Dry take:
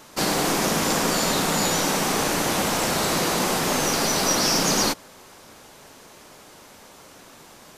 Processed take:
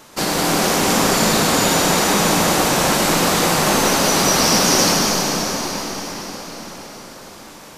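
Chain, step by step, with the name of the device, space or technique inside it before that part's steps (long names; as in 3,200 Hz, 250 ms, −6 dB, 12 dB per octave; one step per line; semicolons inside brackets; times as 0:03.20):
cathedral (convolution reverb RT60 5.7 s, pre-delay 100 ms, DRR −2 dB)
level +2.5 dB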